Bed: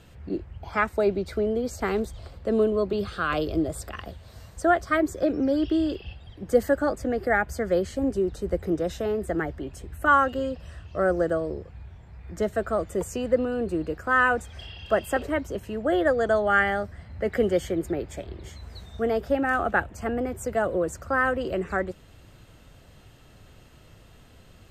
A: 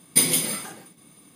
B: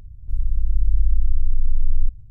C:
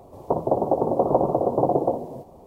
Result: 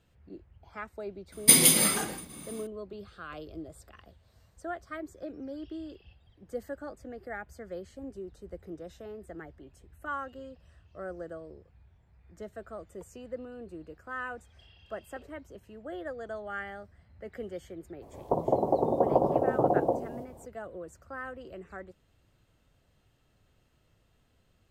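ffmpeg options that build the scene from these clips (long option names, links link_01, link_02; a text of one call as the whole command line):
ffmpeg -i bed.wav -i cue0.wav -i cue1.wav -i cue2.wav -filter_complex "[0:a]volume=-16.5dB[link_01];[1:a]dynaudnorm=framelen=140:gausssize=3:maxgain=7dB,atrim=end=1.35,asetpts=PTS-STARTPTS,afade=type=in:duration=0.004:curve=hsin,afade=type=out:start_time=1.346:duration=0.004:curve=hsin,adelay=1320[link_02];[3:a]atrim=end=2.46,asetpts=PTS-STARTPTS,volume=-4.5dB,afade=type=in:duration=0.02,afade=type=out:start_time=2.44:duration=0.02,adelay=18010[link_03];[link_01][link_02][link_03]amix=inputs=3:normalize=0" out.wav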